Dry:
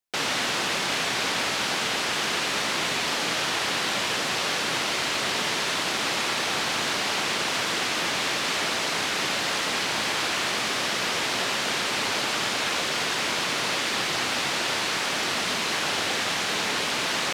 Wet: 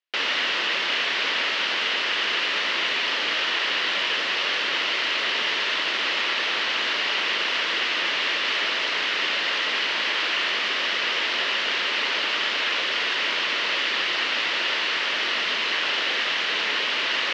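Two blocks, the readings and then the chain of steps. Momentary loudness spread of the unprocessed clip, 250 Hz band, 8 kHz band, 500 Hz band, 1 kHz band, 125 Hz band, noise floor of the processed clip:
0 LU, -6.5 dB, -11.5 dB, -2.5 dB, -1.5 dB, under -10 dB, -26 dBFS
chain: cabinet simulation 370–4800 Hz, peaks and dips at 770 Hz -7 dB, 1.9 kHz +5 dB, 2.9 kHz +7 dB

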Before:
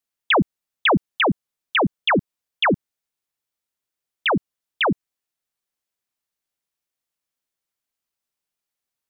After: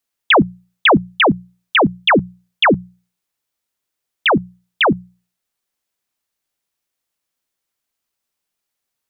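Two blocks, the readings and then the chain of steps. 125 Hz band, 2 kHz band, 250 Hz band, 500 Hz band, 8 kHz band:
+5.0 dB, +6.0 dB, +6.0 dB, +6.0 dB, no reading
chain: hum notches 60/120/180 Hz; trim +6 dB

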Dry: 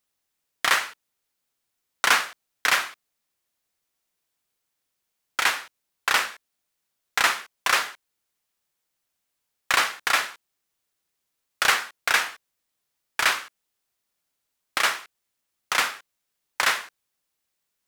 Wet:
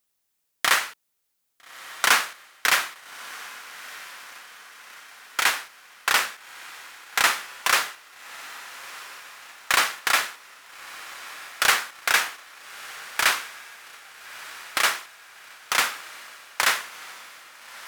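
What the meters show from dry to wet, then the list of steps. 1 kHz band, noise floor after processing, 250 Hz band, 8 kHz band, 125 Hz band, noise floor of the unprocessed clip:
+0.5 dB, -75 dBFS, 0.0 dB, +3.0 dB, no reading, -80 dBFS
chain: treble shelf 7.3 kHz +6 dB; on a send: echo that smears into a reverb 1294 ms, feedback 52%, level -16 dB

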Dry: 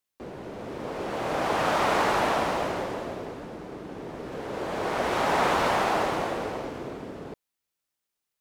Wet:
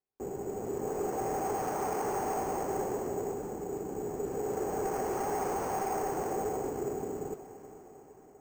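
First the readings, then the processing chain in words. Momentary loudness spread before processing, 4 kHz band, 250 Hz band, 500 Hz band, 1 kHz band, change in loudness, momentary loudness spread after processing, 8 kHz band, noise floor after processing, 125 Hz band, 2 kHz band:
16 LU, -19.5 dB, -4.0 dB, -3.5 dB, -7.0 dB, -7.0 dB, 9 LU, 0.0 dB, -55 dBFS, -5.0 dB, -15.5 dB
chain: bass shelf 450 Hz +6 dB; compression 4:1, threshold -26 dBFS, peak gain reduction 7.5 dB; small resonant body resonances 410/770 Hz, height 13 dB; modulation noise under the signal 19 dB; overload inside the chain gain 19.5 dB; distance through air 470 m; echo that smears into a reverb 483 ms, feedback 57%, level -14.5 dB; careless resampling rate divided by 6×, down filtered, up hold; trim -7 dB

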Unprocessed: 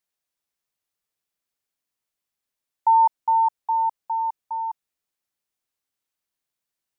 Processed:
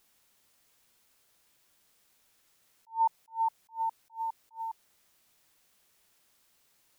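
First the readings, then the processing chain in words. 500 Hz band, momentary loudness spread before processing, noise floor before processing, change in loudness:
no reading, 12 LU, under -85 dBFS, -12.0 dB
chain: word length cut 10-bit, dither triangular; attacks held to a fixed rise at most 280 dB/s; trim -8.5 dB

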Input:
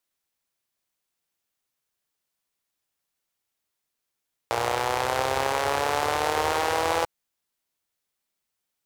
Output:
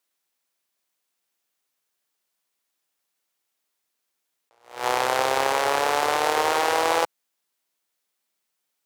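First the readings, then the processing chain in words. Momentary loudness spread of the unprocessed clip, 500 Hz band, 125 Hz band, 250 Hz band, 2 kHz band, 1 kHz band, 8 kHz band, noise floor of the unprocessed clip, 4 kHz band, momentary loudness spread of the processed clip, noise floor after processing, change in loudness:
4 LU, +2.0 dB, -8.0 dB, +1.0 dB, +2.5 dB, +2.5 dB, +2.5 dB, -82 dBFS, +2.5 dB, 4 LU, -79 dBFS, +3.0 dB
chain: Bessel high-pass 240 Hz, order 2; attacks held to a fixed rise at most 150 dB/s; trim +3.5 dB

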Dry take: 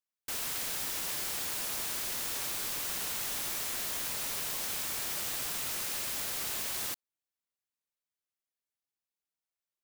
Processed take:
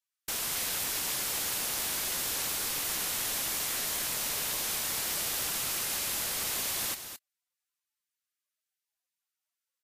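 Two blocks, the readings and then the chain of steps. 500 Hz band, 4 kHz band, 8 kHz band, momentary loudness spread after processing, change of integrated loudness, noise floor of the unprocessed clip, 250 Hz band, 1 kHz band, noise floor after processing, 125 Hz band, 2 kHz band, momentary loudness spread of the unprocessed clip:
+3.5 dB, +4.0 dB, +4.5 dB, 1 LU, +2.5 dB, under -85 dBFS, +3.5 dB, +3.0 dB, under -85 dBFS, +3.5 dB, +3.5 dB, 0 LU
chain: on a send: delay 218 ms -9.5 dB; on the sum: trim +3 dB; Vorbis 48 kbps 44.1 kHz

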